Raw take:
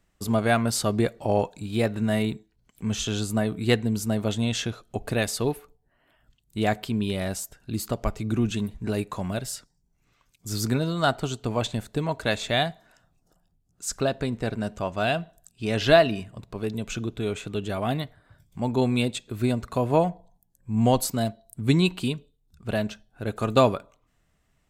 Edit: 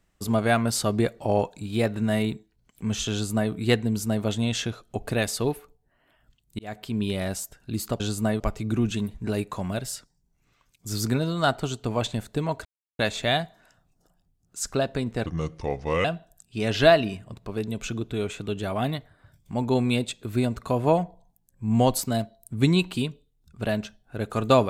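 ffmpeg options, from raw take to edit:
-filter_complex "[0:a]asplit=7[s0][s1][s2][s3][s4][s5][s6];[s0]atrim=end=6.59,asetpts=PTS-STARTPTS,afade=t=out:st=6.586:d=0.004:c=hsin[s7];[s1]atrim=start=6.59:end=8.002,asetpts=PTS-STARTPTS,afade=t=in:d=0.43[s8];[s2]atrim=start=3.118:end=3.522[s9];[s3]atrim=start=7.998:end=12.25,asetpts=PTS-STARTPTS,afade=t=out:st=4.248:d=0.004:c=hsin,apad=pad_dur=0.34[s10];[s4]atrim=start=12.25:end=14.524,asetpts=PTS-STARTPTS,afade=t=in:d=0.004:c=hsin[s11];[s5]atrim=start=14.52:end=15.11,asetpts=PTS-STARTPTS,asetrate=33075,aresample=44100[s12];[s6]atrim=start=15.106[s13];[s7][s8]concat=n=2:v=0:a=1[s14];[s14][s9]acrossfade=d=0.004:c1=hsin:c2=hsin[s15];[s10][s11]concat=n=2:v=0:a=1[s16];[s15][s16]acrossfade=d=0.004:c1=hsin:c2=hsin[s17];[s17][s12]acrossfade=d=0.004:c1=hsin:c2=hsin[s18];[s18][s13]acrossfade=d=0.004:c1=hsin:c2=hsin"

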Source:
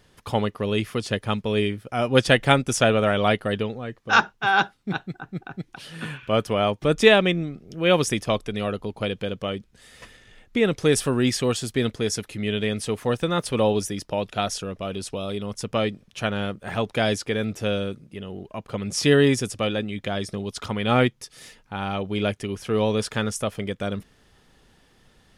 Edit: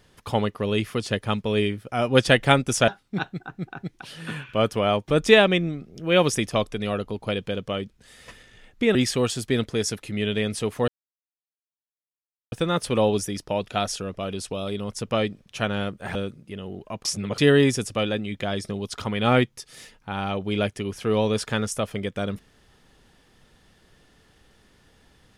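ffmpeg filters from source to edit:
-filter_complex "[0:a]asplit=7[s0][s1][s2][s3][s4][s5][s6];[s0]atrim=end=2.882[s7];[s1]atrim=start=4.618:end=10.692[s8];[s2]atrim=start=11.208:end=13.14,asetpts=PTS-STARTPTS,afade=t=out:st=1.928:d=0.004:c=hsin,apad=pad_dur=1.64[s9];[s3]atrim=start=13.14:end=16.772,asetpts=PTS-STARTPTS,afade=t=in:d=0.004:c=hsin[s10];[s4]atrim=start=17.788:end=18.692[s11];[s5]atrim=start=18.688:end=19.022,asetpts=PTS-STARTPTS,areverse[s12];[s6]atrim=start=19.018[s13];[s7][s8]acrossfade=d=0.004:c1=hsin:c2=hsin[s14];[s9][s10]concat=n=2:v=0:a=1[s15];[s14][s15]acrossfade=d=0.004:c1=hsin:c2=hsin[s16];[s16][s11]acrossfade=d=0.004:c1=hsin:c2=hsin[s17];[s17][s12]acrossfade=d=0.004:c1=hsin:c2=hsin[s18];[s18][s13]acrossfade=d=0.004:c1=hsin:c2=hsin"

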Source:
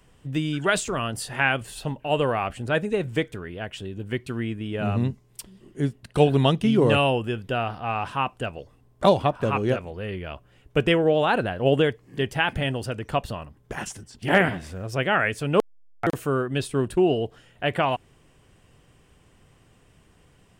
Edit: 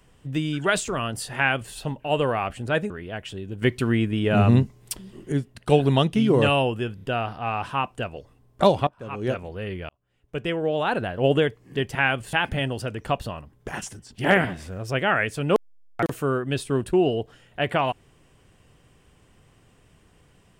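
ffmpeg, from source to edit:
-filter_complex "[0:a]asplit=10[s0][s1][s2][s3][s4][s5][s6][s7][s8][s9];[s0]atrim=end=2.902[s10];[s1]atrim=start=3.378:end=4.102[s11];[s2]atrim=start=4.098:end=5.802,asetpts=PTS-STARTPTS,volume=2.24[s12];[s3]atrim=start=5.798:end=7.462[s13];[s4]atrim=start=7.428:end=7.462[s14];[s5]atrim=start=7.428:end=9.29,asetpts=PTS-STARTPTS,afade=t=out:st=1.858:d=0.004:c=hsin:silence=0.11885[s15];[s6]atrim=start=9.29:end=10.31,asetpts=PTS-STARTPTS,afade=t=in:d=0.49:c=qua:silence=0.11885,afade=t=out:st=1.016:d=0.004:c=hsin[s16];[s7]atrim=start=10.31:end=12.372,asetpts=PTS-STARTPTS,afade=t=in:d=1.33[s17];[s8]atrim=start=1.358:end=1.742[s18];[s9]atrim=start=12.368[s19];[s10][s11]acrossfade=d=0.004:c1=hsin:c2=hsin[s20];[s20][s12]acrossfade=d=0.004:c1=hsin:c2=hsin[s21];[s21][s13]acrossfade=d=0.004:c1=hsin:c2=hsin[s22];[s22][s14]acrossfade=d=0.004:c1=hsin:c2=hsin[s23];[s15][s16][s17]concat=n=3:v=0:a=1[s24];[s23][s24]acrossfade=d=0.004:c1=hsin:c2=hsin[s25];[s25][s18]acrossfade=d=0.004:c1=hsin:c2=hsin[s26];[s26][s19]acrossfade=d=0.004:c1=hsin:c2=hsin"

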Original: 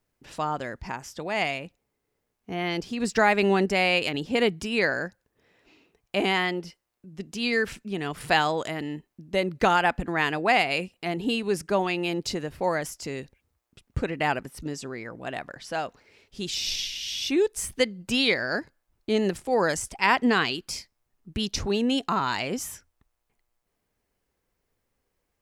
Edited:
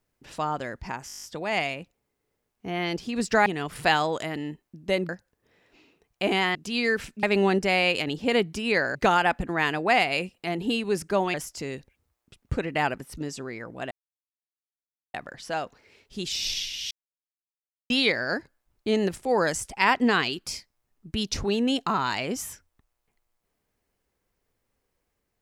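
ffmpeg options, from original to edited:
-filter_complex "[0:a]asplit=18[s0][s1][s2][s3][s4][s5][s6][s7][s8][s9][s10][s11][s12][s13][s14][s15][s16][s17];[s0]atrim=end=1.092[s18];[s1]atrim=start=1.068:end=1.092[s19];[s2]atrim=start=1.068:end=1.092[s20];[s3]atrim=start=1.068:end=1.092[s21];[s4]atrim=start=1.068:end=1.092[s22];[s5]atrim=start=1.068:end=1.092[s23];[s6]atrim=start=1.068:end=1.092[s24];[s7]atrim=start=1.068:end=1.092[s25];[s8]atrim=start=1.068:end=3.302[s26];[s9]atrim=start=7.908:end=9.542[s27];[s10]atrim=start=5.018:end=6.482[s28];[s11]atrim=start=7.228:end=7.912[s29];[s12]atrim=start=3.298:end=5.022[s30];[s13]atrim=start=9.538:end=11.932[s31];[s14]atrim=start=12.788:end=15.36,asetpts=PTS-STARTPTS,afade=t=out:st=2.568:d=0.004:c=hsin,apad=pad_dur=1.23[s32];[s15]atrim=start=15.36:end=17.13,asetpts=PTS-STARTPTS,afade=t=in:d=0.004:c=hsin,afade=t=out:st=1.766:d=0.004:c=hsin[s33];[s16]atrim=start=17.13:end=18.12,asetpts=PTS-STARTPTS,volume=0[s34];[s17]atrim=start=18.12,asetpts=PTS-STARTPTS,afade=t=in:d=0.004:c=hsin[s35];[s18][s19]acrossfade=d=0.004:c1=hsin:c2=hsin[s36];[s36][s20]acrossfade=d=0.004:c1=hsin:c2=hsin[s37];[s37][s21]acrossfade=d=0.004:c1=hsin:c2=hsin[s38];[s38][s22]acrossfade=d=0.004:c1=hsin:c2=hsin[s39];[s39][s23]acrossfade=d=0.004:c1=hsin:c2=hsin[s40];[s40][s24]acrossfade=d=0.004:c1=hsin:c2=hsin[s41];[s41][s25]acrossfade=d=0.004:c1=hsin:c2=hsin[s42];[s42][s26]acrossfade=d=0.004:c1=hsin:c2=hsin[s43];[s43][s27]acrossfade=d=0.004:c1=hsin:c2=hsin[s44];[s44][s28]acrossfade=d=0.004:c1=hsin:c2=hsin[s45];[s45][s29]acrossfade=d=0.004:c1=hsin:c2=hsin[s46];[s46][s30]acrossfade=d=0.004:c1=hsin:c2=hsin[s47];[s47][s31]acrossfade=d=0.004:c1=hsin:c2=hsin[s48];[s32][s33][s34][s35]concat=n=4:v=0:a=1[s49];[s48][s49]acrossfade=d=0.004:c1=hsin:c2=hsin"

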